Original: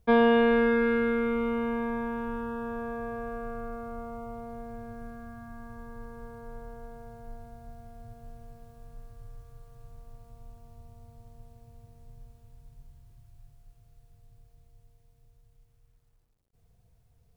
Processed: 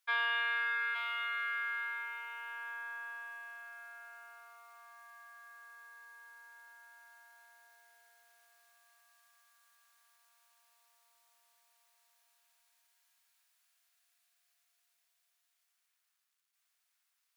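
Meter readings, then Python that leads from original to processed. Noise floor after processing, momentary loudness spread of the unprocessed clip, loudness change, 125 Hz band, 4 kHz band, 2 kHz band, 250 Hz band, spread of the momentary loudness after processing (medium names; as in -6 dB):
-81 dBFS, 23 LU, -7.5 dB, under -40 dB, +1.0 dB, +0.5 dB, under -40 dB, 23 LU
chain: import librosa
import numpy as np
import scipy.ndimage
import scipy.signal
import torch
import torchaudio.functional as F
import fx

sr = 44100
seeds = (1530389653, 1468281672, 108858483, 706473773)

p1 = scipy.signal.sosfilt(scipy.signal.butter(4, 1300.0, 'highpass', fs=sr, output='sos'), x)
y = p1 + fx.echo_single(p1, sr, ms=867, db=-5.5, dry=0)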